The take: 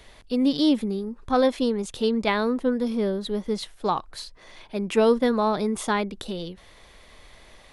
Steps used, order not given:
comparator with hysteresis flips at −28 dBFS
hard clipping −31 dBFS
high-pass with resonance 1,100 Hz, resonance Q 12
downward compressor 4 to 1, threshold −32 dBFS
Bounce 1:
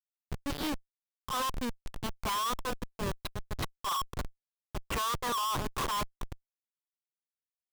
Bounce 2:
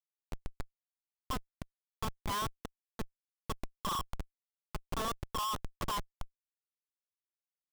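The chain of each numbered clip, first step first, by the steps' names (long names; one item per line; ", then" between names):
high-pass with resonance, then comparator with hysteresis, then downward compressor, then hard clipping
downward compressor, then hard clipping, then high-pass with resonance, then comparator with hysteresis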